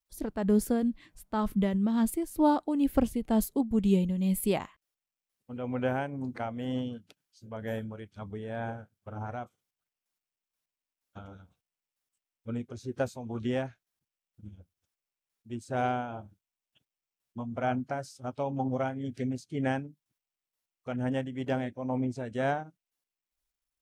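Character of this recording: tremolo triangle 2.1 Hz, depth 60%; SBC

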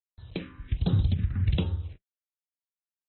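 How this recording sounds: random-step tremolo; a quantiser's noise floor 8-bit, dither none; phasing stages 4, 1.3 Hz, lowest notch 590–2300 Hz; AAC

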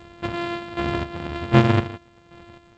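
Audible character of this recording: a buzz of ramps at a fixed pitch in blocks of 128 samples; chopped level 1.3 Hz, depth 60%, duty 35%; G.722

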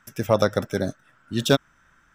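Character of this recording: noise floor -61 dBFS; spectral tilt -4.5 dB/oct

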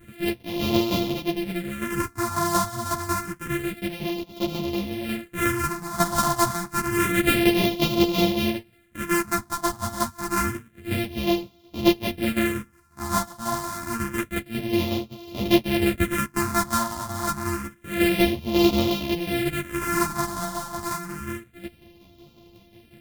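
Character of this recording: a buzz of ramps at a fixed pitch in blocks of 128 samples; phasing stages 4, 0.28 Hz, lowest notch 420–1600 Hz; tremolo saw down 5.5 Hz, depth 55%; a shimmering, thickened sound

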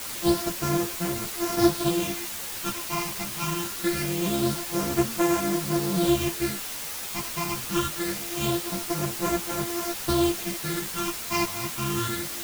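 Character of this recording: a buzz of ramps at a fixed pitch in blocks of 128 samples; phasing stages 8, 0.24 Hz, lowest notch 470–4000 Hz; a quantiser's noise floor 6-bit, dither triangular; a shimmering, thickened sound

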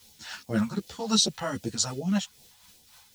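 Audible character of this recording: a quantiser's noise floor 10-bit, dither triangular; phasing stages 2, 2.6 Hz, lowest notch 320–1200 Hz; tremolo triangle 3.8 Hz, depth 50%; a shimmering, thickened sound

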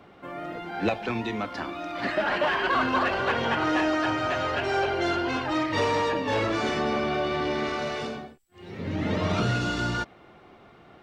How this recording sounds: noise floor -53 dBFS; spectral tilt -3.5 dB/oct

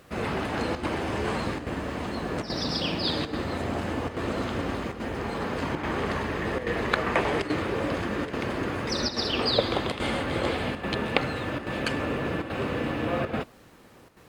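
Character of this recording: a quantiser's noise floor 10-bit, dither none; chopped level 1.2 Hz, depth 60%, duty 90%; Vorbis

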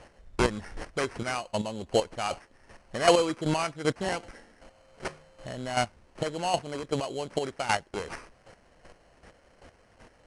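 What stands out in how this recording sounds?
aliases and images of a low sample rate 3600 Hz, jitter 0%; chopped level 2.6 Hz, depth 65%, duty 20%; IMA ADPCM

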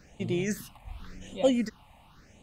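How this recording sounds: phasing stages 6, 0.9 Hz, lowest notch 390–1600 Hz

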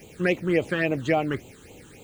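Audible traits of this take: a quantiser's noise floor 10-bit, dither triangular; phasing stages 8, 3.6 Hz, lowest notch 650–1700 Hz

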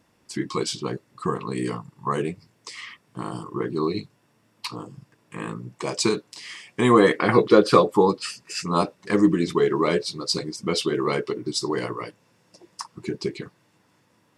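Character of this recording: noise floor -64 dBFS; spectral tilt -5.0 dB/oct

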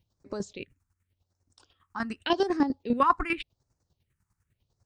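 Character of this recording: chopped level 10 Hz, depth 65%, duty 30%; phasing stages 4, 0.87 Hz, lowest notch 520–3100 Hz

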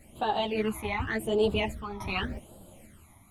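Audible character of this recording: phasing stages 12, 0.87 Hz, lowest notch 480–2100 Hz; random-step tremolo; a shimmering, thickened sound

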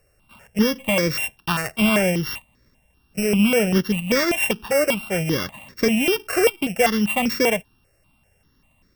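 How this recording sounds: a buzz of ramps at a fixed pitch in blocks of 16 samples; notches that jump at a steady rate 5.1 Hz 930–2900 Hz

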